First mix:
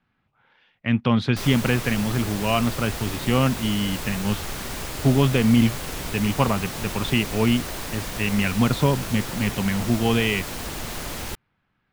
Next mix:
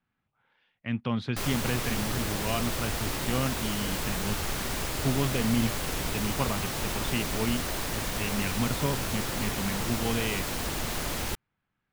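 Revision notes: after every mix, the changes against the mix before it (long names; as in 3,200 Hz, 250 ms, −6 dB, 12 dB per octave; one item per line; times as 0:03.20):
speech −9.5 dB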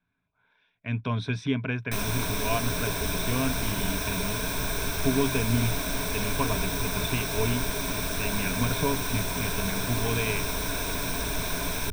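background: entry +0.55 s
master: add EQ curve with evenly spaced ripples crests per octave 1.6, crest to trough 12 dB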